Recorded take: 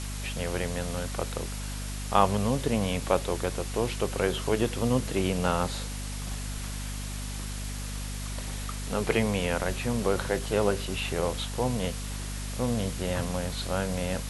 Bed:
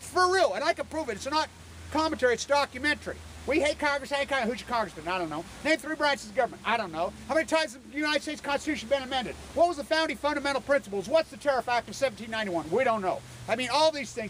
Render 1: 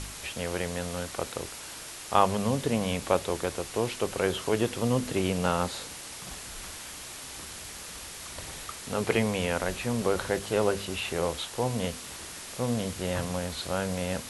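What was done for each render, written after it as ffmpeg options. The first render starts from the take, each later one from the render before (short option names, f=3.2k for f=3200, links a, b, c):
-af "bandreject=f=50:t=h:w=4,bandreject=f=100:t=h:w=4,bandreject=f=150:t=h:w=4,bandreject=f=200:t=h:w=4,bandreject=f=250:t=h:w=4"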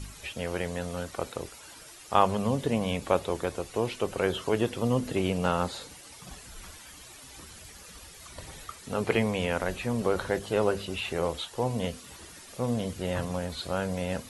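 -af "afftdn=nr=11:nf=-42"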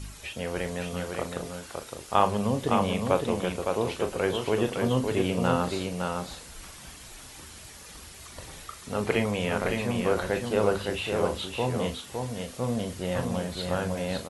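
-filter_complex "[0:a]asplit=2[a][b];[b]adelay=39,volume=-10dB[c];[a][c]amix=inputs=2:normalize=0,aecho=1:1:561:0.596"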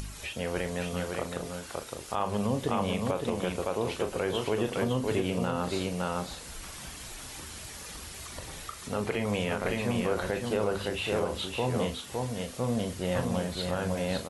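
-af "acompressor=mode=upward:threshold=-36dB:ratio=2.5,alimiter=limit=-17dB:level=0:latency=1:release=150"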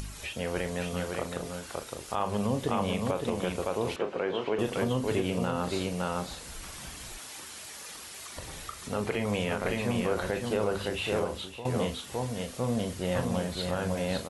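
-filter_complex "[0:a]asettb=1/sr,asplit=3[a][b][c];[a]atrim=end=3.964[d];[b]atrim=start=3.96:end=4.59,asetpts=PTS-STARTPTS,afade=t=in:d=0.004:c=qsin,afade=t=out:st=0.626:d=0.004:c=qsin,highpass=200,lowpass=2.9k[e];[c]atrim=start=4.586[f];[d][e]acrossfade=d=0.004:c1=hsin:c2=qsin[g];[g][f]acrossfade=d=0.004:c1=qsin:c2=hsin,asettb=1/sr,asplit=3[h][i][j];[h]atrim=end=7.184[k];[i]atrim=start=7.18:end=8.37,asetpts=PTS-STARTPTS,afade=t=in:d=0.004:c=qsin,afade=t=out:st=1.186:d=0.004:c=qsin,highpass=f=440:p=1[l];[j]atrim=start=8.366[m];[k][l]acrossfade=d=0.004:c1=hsin:c2=qsin[n];[n][m]acrossfade=d=0.004:c1=qsin:c2=hsin,asplit=2[o][p];[o]atrim=end=11.65,asetpts=PTS-STARTPTS,afade=t=out:st=11.2:d=0.45:silence=0.199526[q];[p]atrim=start=11.65,asetpts=PTS-STARTPTS,afade=t=in:d=0.004:c=hsin:silence=0.199526[r];[q][r]concat=n=2:v=0:a=1"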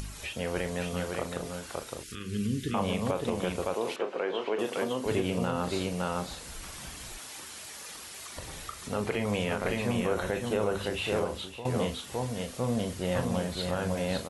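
-filter_complex "[0:a]asettb=1/sr,asplit=3[a][b][c];[a]atrim=end=2.034[d];[b]atrim=start=2.03:end=2.74,asetpts=PTS-STARTPTS,afade=t=in:d=0.004:c=qsin,afade=t=out:st=0.706:d=0.004:c=qsin,asuperstop=centerf=770:order=8:qfactor=0.67[e];[c]atrim=start=2.736[f];[d][e]acrossfade=d=0.004:c1=hsin:c2=qsin[g];[g][f]acrossfade=d=0.004:c1=qsin:c2=hsin,asettb=1/sr,asplit=3[h][i][j];[h]atrim=end=3.744[k];[i]atrim=start=3.74:end=5.06,asetpts=PTS-STARTPTS,afade=t=in:d=0.004:c=qsin,afade=t=out:st=1.316:d=0.004:c=qsin,highpass=280[l];[j]atrim=start=5.056[m];[k][l]acrossfade=d=0.004:c1=hsin:c2=qsin[n];[n][m]acrossfade=d=0.004:c1=qsin:c2=hsin,asettb=1/sr,asplit=3[o][p][q];[o]atrim=end=9.954[r];[p]atrim=start=9.95:end=10.83,asetpts=PTS-STARTPTS,afade=t=in:d=0.004:c=qsin,afade=t=out:st=0.876:d=0.004:c=qsin,bandreject=f=4.7k:w=6[s];[q]atrim=start=10.826[t];[r][s]acrossfade=d=0.004:c1=hsin:c2=qsin[u];[u][t]acrossfade=d=0.004:c1=qsin:c2=hsin"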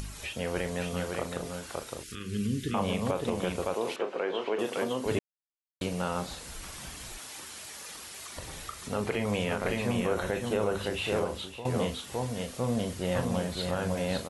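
-filter_complex "[0:a]asplit=3[a][b][c];[a]atrim=end=5.19,asetpts=PTS-STARTPTS,afade=t=out:st=5.186:d=0.004:c=hsin[d];[b]atrim=start=5.19:end=5.81,asetpts=PTS-STARTPTS,volume=0[e];[c]atrim=start=5.81,asetpts=PTS-STARTPTS,afade=t=in:d=0.004:c=hsin[f];[d][e][f]concat=n=3:v=0:a=1"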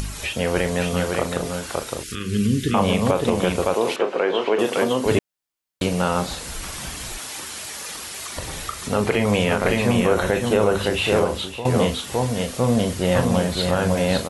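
-af "volume=10.5dB"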